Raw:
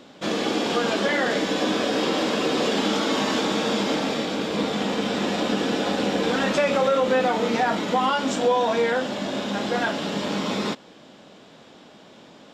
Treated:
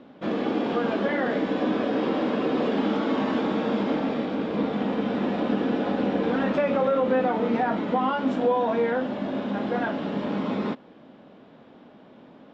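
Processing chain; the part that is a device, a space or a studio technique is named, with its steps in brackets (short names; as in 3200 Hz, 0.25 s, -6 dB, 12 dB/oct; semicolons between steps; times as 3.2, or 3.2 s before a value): phone in a pocket (LPF 3100 Hz 12 dB/oct; bell 250 Hz +4.5 dB 0.36 oct; high shelf 2100 Hz -10 dB); gain -1.5 dB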